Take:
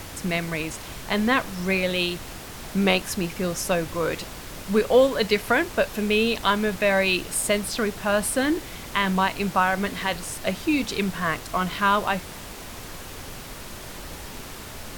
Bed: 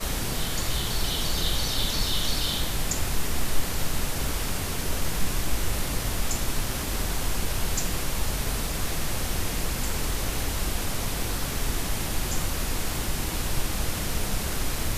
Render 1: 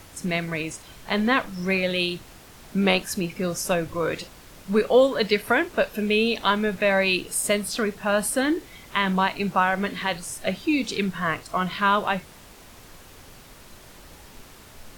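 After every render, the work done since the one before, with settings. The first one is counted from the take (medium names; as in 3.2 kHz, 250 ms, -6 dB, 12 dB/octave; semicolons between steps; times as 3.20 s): noise print and reduce 9 dB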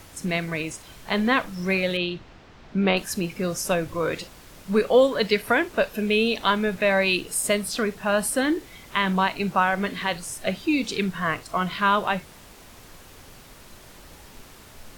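1.97–2.97 s: distance through air 180 m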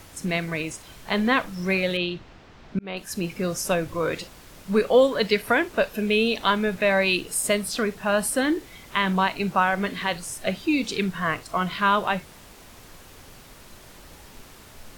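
2.79–3.27 s: fade in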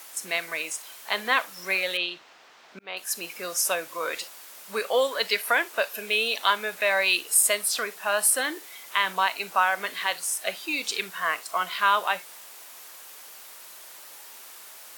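high-pass 700 Hz 12 dB/octave; treble shelf 8.2 kHz +11.5 dB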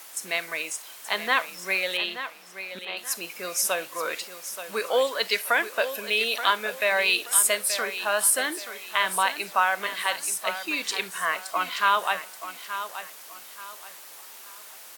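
feedback delay 878 ms, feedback 31%, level -11 dB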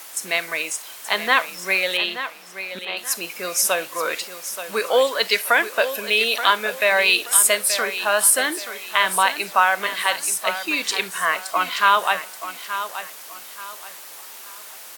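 trim +5.5 dB; peak limiter -2 dBFS, peak gain reduction 2 dB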